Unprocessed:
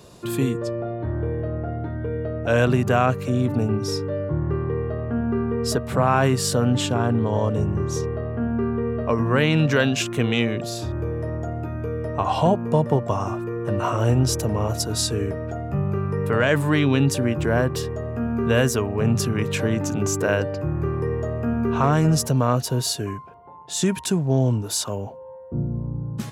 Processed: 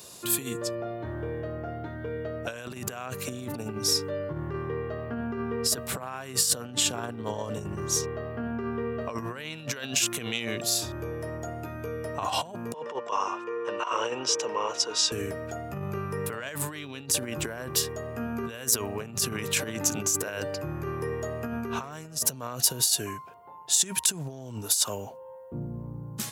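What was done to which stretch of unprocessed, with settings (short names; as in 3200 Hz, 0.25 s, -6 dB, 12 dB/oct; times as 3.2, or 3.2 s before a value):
12.74–15.12 speaker cabinet 430–5500 Hz, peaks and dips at 470 Hz +8 dB, 670 Hz -8 dB, 1000 Hz +8 dB, 2800 Hz +4 dB, 4300 Hz -8 dB
whole clip: high shelf 4900 Hz +7 dB; negative-ratio compressor -23 dBFS, ratio -0.5; tilt +2.5 dB/oct; gain -5 dB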